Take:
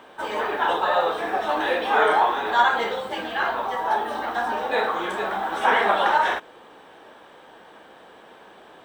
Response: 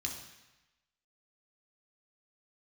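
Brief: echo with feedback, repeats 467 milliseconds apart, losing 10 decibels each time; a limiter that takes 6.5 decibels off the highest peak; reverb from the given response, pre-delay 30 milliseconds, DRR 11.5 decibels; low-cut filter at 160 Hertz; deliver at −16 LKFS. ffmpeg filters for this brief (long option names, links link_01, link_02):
-filter_complex "[0:a]highpass=160,alimiter=limit=-13.5dB:level=0:latency=1,aecho=1:1:467|934|1401|1868:0.316|0.101|0.0324|0.0104,asplit=2[link_01][link_02];[1:a]atrim=start_sample=2205,adelay=30[link_03];[link_02][link_03]afir=irnorm=-1:irlink=0,volume=-12dB[link_04];[link_01][link_04]amix=inputs=2:normalize=0,volume=8dB"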